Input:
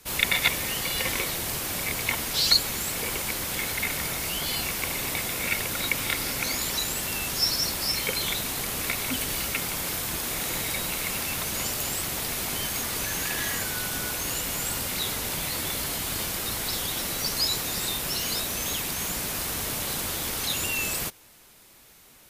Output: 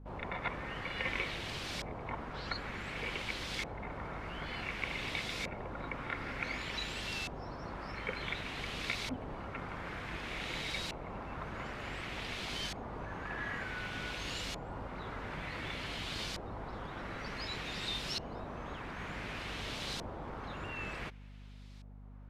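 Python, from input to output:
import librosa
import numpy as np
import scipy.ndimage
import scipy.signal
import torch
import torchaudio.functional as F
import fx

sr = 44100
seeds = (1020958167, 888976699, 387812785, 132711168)

y = fx.filter_lfo_lowpass(x, sr, shape='saw_up', hz=0.55, low_hz=770.0, high_hz=4700.0, q=1.4)
y = fx.add_hum(y, sr, base_hz=50, snr_db=10)
y = y * 10.0 ** (-8.0 / 20.0)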